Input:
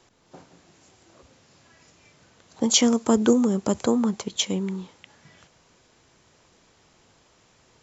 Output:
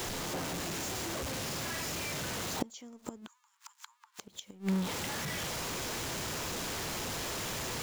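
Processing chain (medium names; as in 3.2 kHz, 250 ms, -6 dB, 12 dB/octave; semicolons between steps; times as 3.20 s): jump at every zero crossing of -29.5 dBFS; inverted gate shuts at -15 dBFS, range -29 dB; 3.27–4.19 s: Chebyshev high-pass 880 Hz, order 8; trim -2 dB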